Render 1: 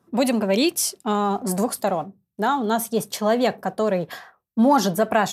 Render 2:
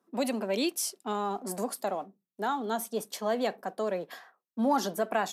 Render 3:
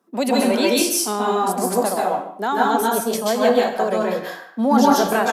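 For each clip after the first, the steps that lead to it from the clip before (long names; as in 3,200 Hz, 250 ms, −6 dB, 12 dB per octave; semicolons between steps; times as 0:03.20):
high-pass filter 220 Hz 24 dB per octave; level −9 dB
far-end echo of a speakerphone 150 ms, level −13 dB; dense smooth reverb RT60 0.51 s, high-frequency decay 0.85×, pre-delay 120 ms, DRR −4.5 dB; level +7.5 dB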